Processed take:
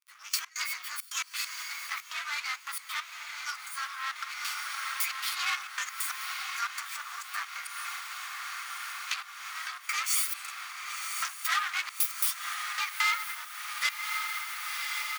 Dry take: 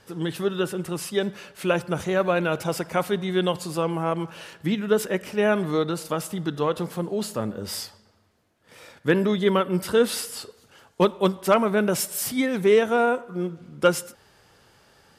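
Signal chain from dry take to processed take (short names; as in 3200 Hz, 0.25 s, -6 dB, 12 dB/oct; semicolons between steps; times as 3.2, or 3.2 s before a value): inharmonic rescaling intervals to 122%; comb 0.9 ms, depth 42%; sample leveller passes 5; step gate "...x.xxxx.x.x." 135 bpm -24 dB; diffused feedback echo 1.09 s, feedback 69%, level -12 dB; compressor 4:1, threshold -32 dBFS, peak gain reduction 17 dB; 1.98–4.16 flange 1.5 Hz, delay 5.8 ms, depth 8.8 ms, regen -79%; elliptic high-pass 1200 Hz, stop band 80 dB; gain +6.5 dB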